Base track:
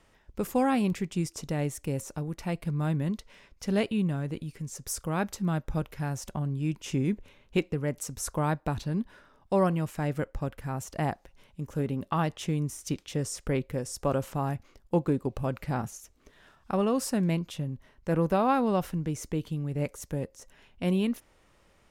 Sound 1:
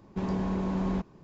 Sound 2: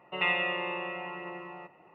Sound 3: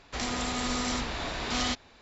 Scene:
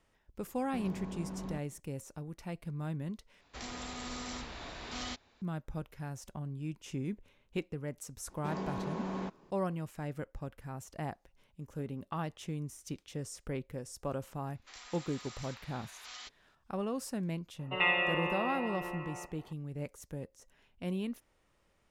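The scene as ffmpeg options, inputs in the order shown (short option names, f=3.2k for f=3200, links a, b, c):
-filter_complex "[1:a]asplit=2[a][b];[3:a]asplit=2[c][d];[0:a]volume=-9.5dB[e];[a]asoftclip=type=tanh:threshold=-22dB[f];[b]highpass=f=390:p=1[g];[d]highpass=1.1k[h];[e]asplit=2[i][j];[i]atrim=end=3.414[k];[c]atrim=end=2.01,asetpts=PTS-STARTPTS,volume=-11dB[l];[j]atrim=start=5.416[m];[f]atrim=end=1.23,asetpts=PTS-STARTPTS,volume=-11dB,afade=t=in:d=0.004:c=hsin,afade=t=out:st=1.226:d=0.004:c=hsin,adelay=570[n];[g]atrim=end=1.23,asetpts=PTS-STARTPTS,volume=-2.5dB,afade=t=in:d=0.004:c=hsin,afade=t=out:st=1.226:d=0.004:c=hsin,adelay=8280[o];[h]atrim=end=2.01,asetpts=PTS-STARTPTS,volume=-16dB,afade=t=in:d=0.004:c=hsin,afade=t=out:st=2.006:d=0.004:c=hsin,adelay=14540[p];[2:a]atrim=end=1.94,asetpts=PTS-STARTPTS,volume=-0.5dB,afade=t=in:d=0.004:c=hsin,afade=t=out:st=1.936:d=0.004:c=hsin,adelay=17590[q];[k][l]acrossfade=d=0.004:c1=hsin:c2=hsin[r];[r][m]acrossfade=d=0.004:c1=hsin:c2=hsin[s];[s][n][o][p][q]amix=inputs=5:normalize=0"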